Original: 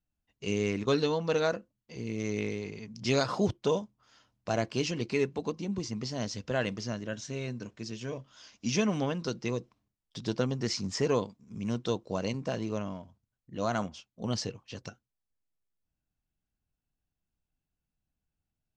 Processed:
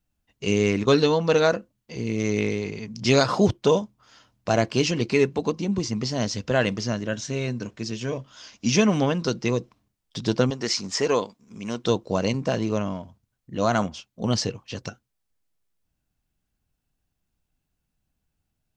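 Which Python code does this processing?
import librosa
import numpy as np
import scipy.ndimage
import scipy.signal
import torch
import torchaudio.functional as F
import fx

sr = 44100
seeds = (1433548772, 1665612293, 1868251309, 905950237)

y = fx.peak_eq(x, sr, hz=87.0, db=-14.5, octaves=2.8, at=(10.5, 11.84))
y = F.gain(torch.from_numpy(y), 8.5).numpy()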